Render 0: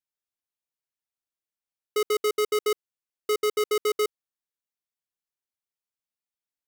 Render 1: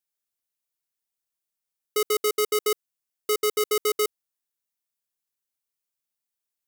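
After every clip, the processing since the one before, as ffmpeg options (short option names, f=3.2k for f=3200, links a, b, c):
-af "highshelf=f=5.7k:g=9"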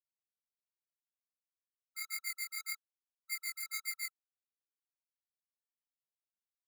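-af "flanger=delay=18.5:depth=4.4:speed=1.8,agate=range=-33dB:threshold=-25dB:ratio=3:detection=peak,afftfilt=real='re*eq(mod(floor(b*sr/1024/1300),2),1)':imag='im*eq(mod(floor(b*sr/1024/1300),2),1)':win_size=1024:overlap=0.75,volume=-1.5dB"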